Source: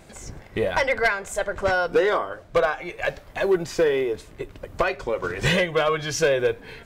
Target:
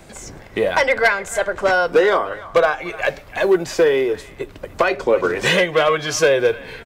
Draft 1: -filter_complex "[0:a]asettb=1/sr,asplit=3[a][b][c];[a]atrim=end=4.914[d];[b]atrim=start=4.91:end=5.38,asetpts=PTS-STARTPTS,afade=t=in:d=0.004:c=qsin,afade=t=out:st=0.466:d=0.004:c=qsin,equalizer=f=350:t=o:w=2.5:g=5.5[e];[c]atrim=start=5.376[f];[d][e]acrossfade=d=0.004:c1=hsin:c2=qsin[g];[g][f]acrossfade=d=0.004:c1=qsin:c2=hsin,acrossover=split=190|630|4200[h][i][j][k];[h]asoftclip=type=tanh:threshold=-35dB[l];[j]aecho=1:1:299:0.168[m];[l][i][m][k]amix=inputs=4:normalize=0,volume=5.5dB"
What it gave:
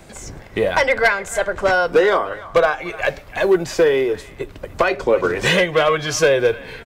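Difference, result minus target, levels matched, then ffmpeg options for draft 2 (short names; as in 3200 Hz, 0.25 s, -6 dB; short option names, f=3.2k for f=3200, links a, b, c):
soft clip: distortion -4 dB
-filter_complex "[0:a]asettb=1/sr,asplit=3[a][b][c];[a]atrim=end=4.914[d];[b]atrim=start=4.91:end=5.38,asetpts=PTS-STARTPTS,afade=t=in:d=0.004:c=qsin,afade=t=out:st=0.466:d=0.004:c=qsin,equalizer=f=350:t=o:w=2.5:g=5.5[e];[c]atrim=start=5.376[f];[d][e]acrossfade=d=0.004:c1=hsin:c2=qsin[g];[g][f]acrossfade=d=0.004:c1=qsin:c2=hsin,acrossover=split=190|630|4200[h][i][j][k];[h]asoftclip=type=tanh:threshold=-43.5dB[l];[j]aecho=1:1:299:0.168[m];[l][i][m][k]amix=inputs=4:normalize=0,volume=5.5dB"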